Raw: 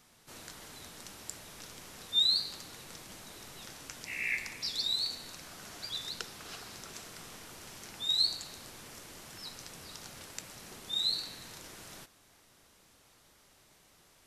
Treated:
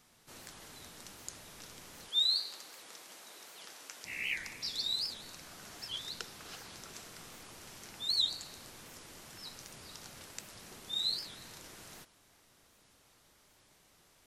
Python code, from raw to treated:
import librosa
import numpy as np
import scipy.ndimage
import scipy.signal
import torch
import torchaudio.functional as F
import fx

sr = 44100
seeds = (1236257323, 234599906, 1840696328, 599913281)

y = fx.highpass(x, sr, hz=400.0, slope=12, at=(2.1, 4.05))
y = fx.record_warp(y, sr, rpm=78.0, depth_cents=250.0)
y = y * librosa.db_to_amplitude(-2.5)